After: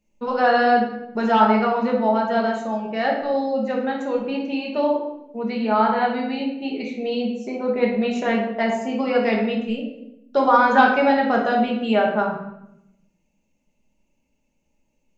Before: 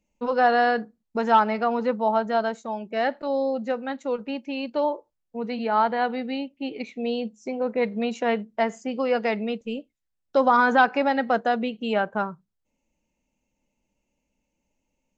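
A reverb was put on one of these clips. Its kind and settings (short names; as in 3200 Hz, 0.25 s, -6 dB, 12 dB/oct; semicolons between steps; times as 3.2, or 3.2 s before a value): shoebox room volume 270 m³, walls mixed, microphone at 1.3 m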